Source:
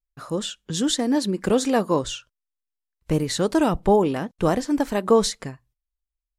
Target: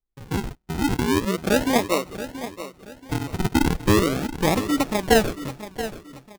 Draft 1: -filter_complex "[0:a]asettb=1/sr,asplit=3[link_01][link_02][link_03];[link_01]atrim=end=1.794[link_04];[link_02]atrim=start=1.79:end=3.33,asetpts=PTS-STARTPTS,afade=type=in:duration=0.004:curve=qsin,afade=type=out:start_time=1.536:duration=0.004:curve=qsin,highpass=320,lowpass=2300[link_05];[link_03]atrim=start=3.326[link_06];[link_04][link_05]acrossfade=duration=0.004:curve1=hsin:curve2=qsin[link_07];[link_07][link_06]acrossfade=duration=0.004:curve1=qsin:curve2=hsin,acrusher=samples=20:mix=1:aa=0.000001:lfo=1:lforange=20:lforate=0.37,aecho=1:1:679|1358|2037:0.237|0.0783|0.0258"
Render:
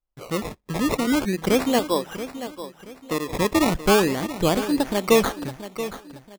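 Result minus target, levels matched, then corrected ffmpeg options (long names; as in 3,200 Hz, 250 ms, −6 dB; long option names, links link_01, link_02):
sample-and-hold swept by an LFO: distortion −13 dB
-filter_complex "[0:a]asettb=1/sr,asplit=3[link_01][link_02][link_03];[link_01]atrim=end=1.794[link_04];[link_02]atrim=start=1.79:end=3.33,asetpts=PTS-STARTPTS,afade=type=in:duration=0.004:curve=qsin,afade=type=out:start_time=1.536:duration=0.004:curve=qsin,highpass=320,lowpass=2300[link_05];[link_03]atrim=start=3.326[link_06];[link_04][link_05]acrossfade=duration=0.004:curve1=hsin:curve2=qsin[link_07];[link_07][link_06]acrossfade=duration=0.004:curve1=qsin:curve2=hsin,acrusher=samples=53:mix=1:aa=0.000001:lfo=1:lforange=53:lforate=0.37,aecho=1:1:679|1358|2037:0.237|0.0783|0.0258"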